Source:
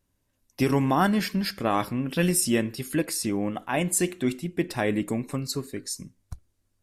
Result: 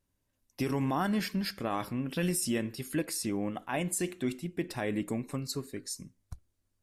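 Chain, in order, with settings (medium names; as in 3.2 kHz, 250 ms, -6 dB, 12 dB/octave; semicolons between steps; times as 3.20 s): peak limiter -16 dBFS, peak gain reduction 4.5 dB; trim -5.5 dB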